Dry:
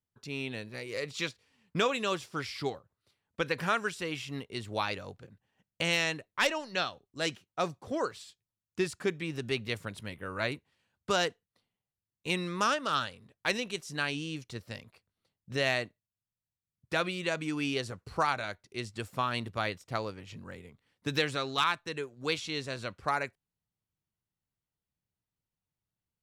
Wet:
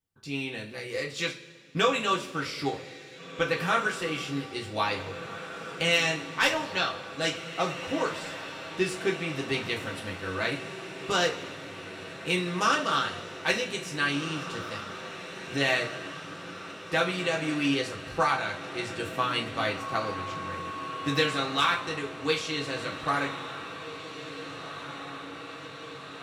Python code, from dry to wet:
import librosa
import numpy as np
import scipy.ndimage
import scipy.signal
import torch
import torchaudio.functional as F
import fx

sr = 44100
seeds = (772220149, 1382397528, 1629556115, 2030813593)

y = fx.dmg_tone(x, sr, hz=1100.0, level_db=-39.0, at=(19.79, 21.36), fade=0.02)
y = fx.echo_diffused(y, sr, ms=1840, feedback_pct=71, wet_db=-12.0)
y = fx.rev_double_slope(y, sr, seeds[0], early_s=0.25, late_s=1.8, knee_db=-19, drr_db=-2.0)